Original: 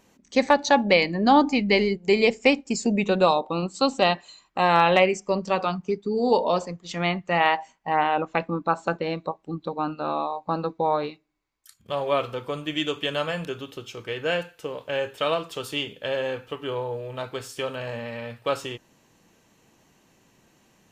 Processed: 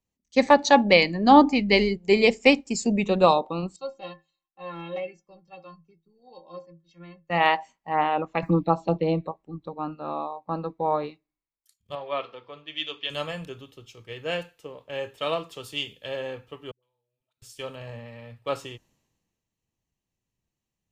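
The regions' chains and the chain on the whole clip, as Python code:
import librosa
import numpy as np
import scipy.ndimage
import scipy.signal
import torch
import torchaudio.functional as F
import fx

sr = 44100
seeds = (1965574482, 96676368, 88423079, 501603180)

y = fx.chain(x, sr, fx.lowpass(hz=5600.0, slope=24),
    fx.stiff_resonator(f0_hz=160.0, decay_s=0.27, stiffness=0.03), at=(3.76, 7.3))
y = fx.chain(y, sr, fx.comb(ms=6.2, depth=0.9),
    fx.env_phaser(low_hz=490.0, high_hz=1900.0, full_db=-17.5),
    fx.band_squash(depth_pct=70), at=(8.42, 9.27))
y = fx.chain(y, sr, fx.lowpass(hz=4500.0, slope=24),
    fx.low_shelf(hz=330.0, db=-11.5),
    fx.hum_notches(base_hz=60, count=8), at=(11.95, 13.1))
y = fx.chain(y, sr, fx.pre_emphasis(coefficient=0.9),
    fx.level_steps(step_db=22),
    fx.dispersion(late='highs', ms=116.0, hz=390.0), at=(16.71, 17.42))
y = fx.low_shelf(y, sr, hz=110.0, db=6.5)
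y = fx.notch(y, sr, hz=1500.0, q=9.5)
y = fx.band_widen(y, sr, depth_pct=70)
y = y * 10.0 ** (-3.0 / 20.0)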